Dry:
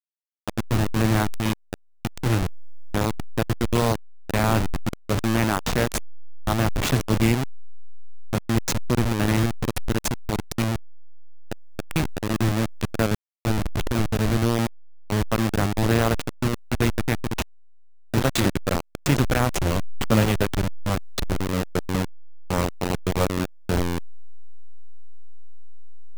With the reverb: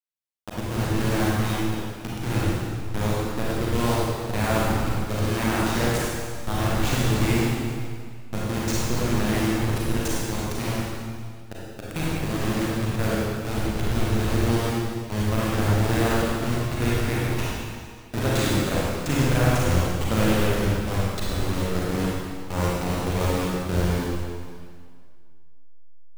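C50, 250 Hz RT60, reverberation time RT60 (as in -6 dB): -4.0 dB, 2.0 s, 2.0 s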